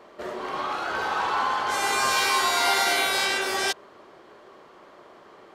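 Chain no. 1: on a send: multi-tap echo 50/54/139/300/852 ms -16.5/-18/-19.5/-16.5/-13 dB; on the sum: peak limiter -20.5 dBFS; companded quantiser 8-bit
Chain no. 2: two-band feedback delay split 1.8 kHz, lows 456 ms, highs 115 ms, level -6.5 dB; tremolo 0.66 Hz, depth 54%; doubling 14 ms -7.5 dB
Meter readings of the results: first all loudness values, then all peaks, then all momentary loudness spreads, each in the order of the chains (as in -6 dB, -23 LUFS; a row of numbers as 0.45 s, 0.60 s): -29.5 LUFS, -24.0 LUFS; -20.5 dBFS, -9.0 dBFS; 14 LU, 18 LU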